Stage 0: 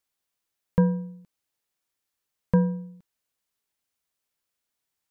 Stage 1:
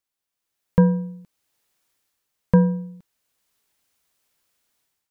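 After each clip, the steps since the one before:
automatic gain control gain up to 14 dB
level −3 dB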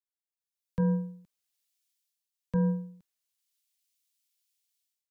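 brickwall limiter −16 dBFS, peak gain reduction 11.5 dB
multiband upward and downward expander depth 70%
level −6.5 dB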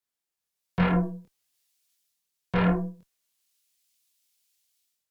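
harmonic generator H 3 −19 dB, 5 −17 dB, 6 −16 dB, 8 −10 dB, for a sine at −18.5 dBFS
multi-voice chorus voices 2, 1.3 Hz, delay 24 ms, depth 3 ms
level +7.5 dB

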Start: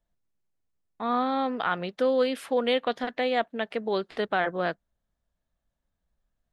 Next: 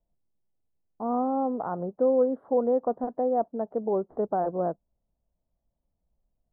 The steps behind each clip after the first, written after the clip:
inverse Chebyshev low-pass filter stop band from 2,300 Hz, stop band 50 dB
level +1.5 dB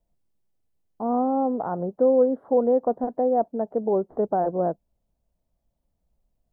dynamic equaliser 1,200 Hz, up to −5 dB, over −48 dBFS, Q 2.7
level +4 dB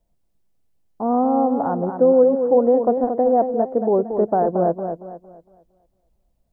feedback echo with a swinging delay time 229 ms, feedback 35%, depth 67 cents, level −7.5 dB
level +4.5 dB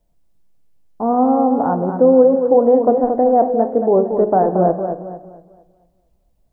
convolution reverb RT60 0.90 s, pre-delay 7 ms, DRR 9.5 dB
level +3.5 dB

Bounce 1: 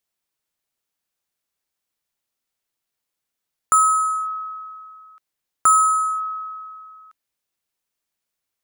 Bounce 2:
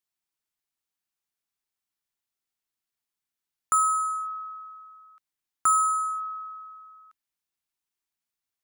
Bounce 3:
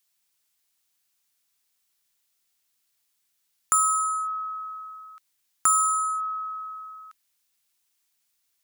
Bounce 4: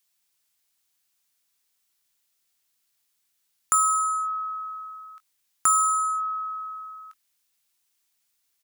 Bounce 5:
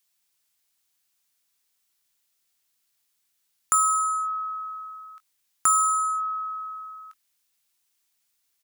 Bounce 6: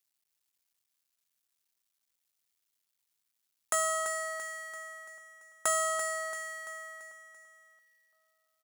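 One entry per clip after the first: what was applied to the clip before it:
parametric band 530 Hz −12 dB 0.34 octaves; mains-hum notches 60/120/180/240/300 Hz; level −6.5 dB
high-shelf EQ 2,000 Hz +10.5 dB; downward compressor 1.5 to 1, threshold −40 dBFS, peak gain reduction 10 dB; level +5 dB
double-tracking delay 21 ms −14 dB
no processing that can be heard
sub-harmonics by changed cycles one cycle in 2, muted; on a send: repeating echo 338 ms, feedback 49%, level −9.5 dB; on the sum: level −5.5 dB

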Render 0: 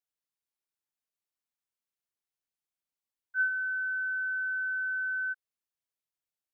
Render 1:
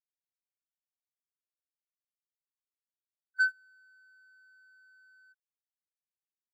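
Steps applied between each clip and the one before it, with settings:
tilt shelving filter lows −6.5 dB, about 1,500 Hz
noise gate −27 dBFS, range −31 dB
leveller curve on the samples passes 1
level +2.5 dB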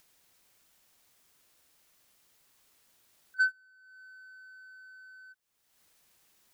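upward compression, threshold −43 dBFS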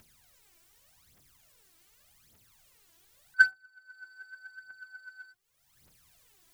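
sub-octave generator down 1 octave, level −4 dB
phase shifter 0.85 Hz, delay 3.1 ms, feedback 71%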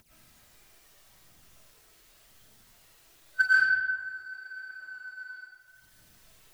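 amplitude tremolo 13 Hz, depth 59%
comb and all-pass reverb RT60 1.7 s, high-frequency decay 0.6×, pre-delay 75 ms, DRR −9 dB

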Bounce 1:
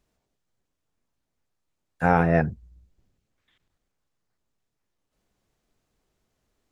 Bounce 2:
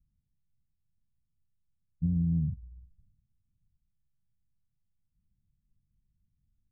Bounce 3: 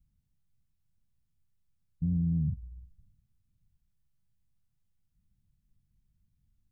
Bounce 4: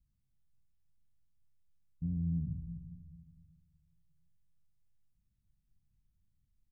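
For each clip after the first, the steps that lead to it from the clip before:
inverse Chebyshev low-pass filter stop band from 1,000 Hz, stop band 80 dB; downward compressor, threshold −28 dBFS, peak gain reduction 6 dB; level +3.5 dB
brickwall limiter −25.5 dBFS, peak gain reduction 6 dB; level +3 dB
repeating echo 230 ms, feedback 53%, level −21 dB; on a send at −9 dB: convolution reverb RT60 1.2 s, pre-delay 3 ms; on the sum: level −6 dB

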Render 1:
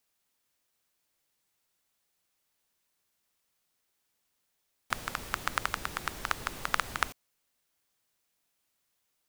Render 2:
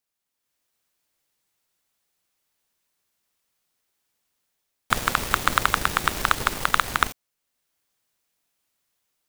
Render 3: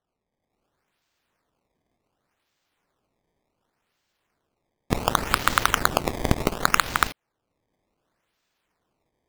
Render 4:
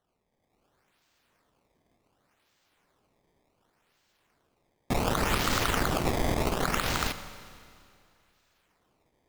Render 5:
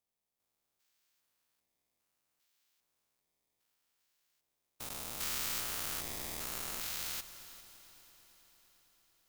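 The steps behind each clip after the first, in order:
automatic gain control gain up to 8 dB; leveller curve on the samples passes 3
sample-and-hold swept by an LFO 18×, swing 160% 0.68 Hz
in parallel at +3 dB: brickwall limiter −12.5 dBFS, peak gain reduction 10.5 dB; on the sum: hard clipping −15.5 dBFS, distortion −3 dB; four-comb reverb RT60 2.3 s, combs from 30 ms, DRR 11.5 dB; level −3.5 dB
spectrum averaged block by block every 400 ms; first-order pre-emphasis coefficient 0.9; echo machine with several playback heads 112 ms, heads second and third, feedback 71%, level −19 dB

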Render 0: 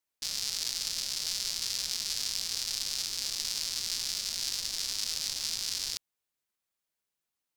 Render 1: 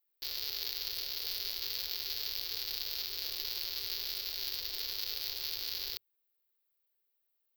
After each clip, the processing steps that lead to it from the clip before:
drawn EQ curve 110 Hz 0 dB, 190 Hz −27 dB, 400 Hz +9 dB, 570 Hz +1 dB, 1,100 Hz −2 dB, 4,500 Hz +1 dB, 8,600 Hz −26 dB, 15,000 Hz +15 dB
level −3 dB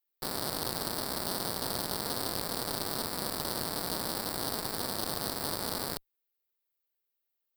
harmonic generator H 3 −20 dB, 6 −8 dB, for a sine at −17.5 dBFS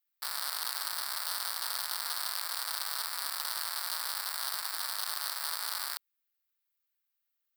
four-pole ladder high-pass 970 Hz, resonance 25%
level +6.5 dB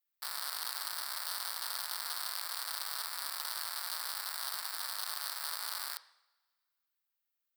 convolution reverb, pre-delay 3 ms, DRR 13 dB
level −3.5 dB

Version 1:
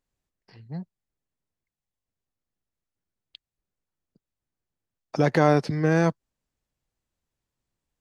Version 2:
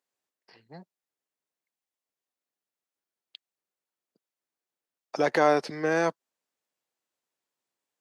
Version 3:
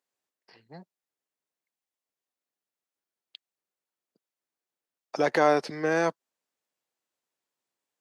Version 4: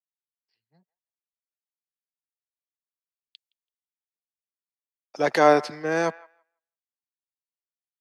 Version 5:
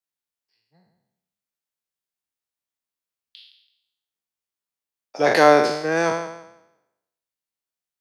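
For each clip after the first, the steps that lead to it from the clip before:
high-pass filter 400 Hz 12 dB per octave
no processing that can be heard
delay with a band-pass on its return 166 ms, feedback 31%, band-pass 1,400 Hz, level −15.5 dB; multiband upward and downward expander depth 100%
peak hold with a decay on every bin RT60 0.86 s; level +2.5 dB

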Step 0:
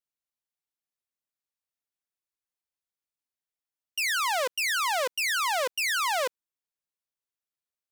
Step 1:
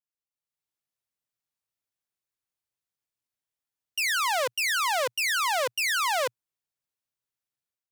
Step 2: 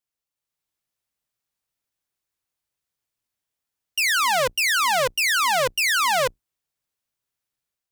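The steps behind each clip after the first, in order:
parametric band 120 Hz +10 dB 0.47 octaves; automatic gain control gain up to 9.5 dB; level −8.5 dB
sub-octave generator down 2 octaves, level −5 dB; level +5.5 dB

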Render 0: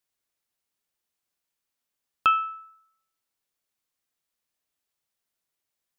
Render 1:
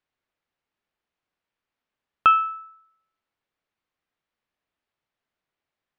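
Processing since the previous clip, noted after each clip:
low-pass filter 2,600 Hz 12 dB per octave
level +5 dB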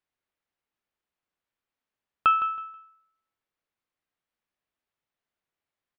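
repeating echo 161 ms, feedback 24%, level −12.5 dB
level −4.5 dB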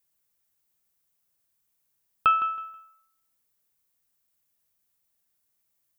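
sub-octave generator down 1 octave, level −4 dB
background noise violet −75 dBFS

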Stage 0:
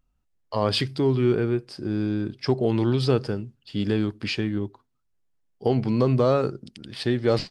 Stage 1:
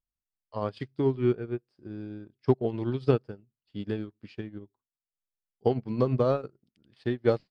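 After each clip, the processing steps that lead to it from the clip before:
high-shelf EQ 5,200 Hz −12 dB
transient designer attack +2 dB, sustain −7 dB
expander for the loud parts 2.5 to 1, over −31 dBFS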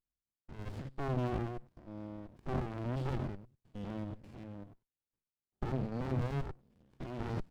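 spectrum averaged block by block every 100 ms
transient designer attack −3 dB, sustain +9 dB
windowed peak hold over 65 samples
level −1.5 dB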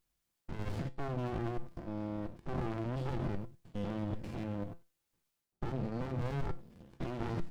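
reversed playback
downward compressor 6 to 1, threshold −45 dBFS, peak gain reduction 15.5 dB
reversed playback
tuned comb filter 170 Hz, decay 0.25 s, harmonics all, mix 60%
level +17.5 dB

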